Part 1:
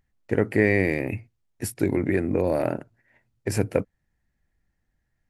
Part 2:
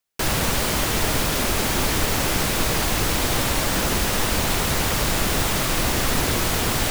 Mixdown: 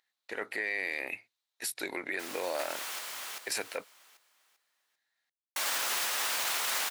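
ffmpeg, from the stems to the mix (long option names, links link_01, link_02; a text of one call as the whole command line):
ffmpeg -i stem1.wav -i stem2.wav -filter_complex "[0:a]equalizer=frequency=3900:width_type=o:width=0.44:gain=12,volume=1dB,asplit=2[link_01][link_02];[1:a]adelay=2000,volume=-4dB,asplit=3[link_03][link_04][link_05];[link_03]atrim=end=2.99,asetpts=PTS-STARTPTS,afade=type=out:start_time=2.986:duration=0.004:curve=hsin[link_06];[link_04]atrim=start=2.99:end=5.56,asetpts=PTS-STARTPTS,volume=0[link_07];[link_05]atrim=start=5.56,asetpts=PTS-STARTPTS,afade=type=in:duration=0.004:curve=hsin[link_08];[link_06][link_07][link_08]concat=n=3:v=0:a=1,asplit=2[link_09][link_10];[link_10]volume=-12dB[link_11];[link_02]apad=whole_len=392686[link_12];[link_09][link_12]sidechaincompress=threshold=-30dB:ratio=10:attack=16:release=1140[link_13];[link_11]aecho=0:1:394|788|1182|1576|1970:1|0.33|0.109|0.0359|0.0119[link_14];[link_01][link_13][link_14]amix=inputs=3:normalize=0,highpass=960,alimiter=limit=-22dB:level=0:latency=1:release=36" out.wav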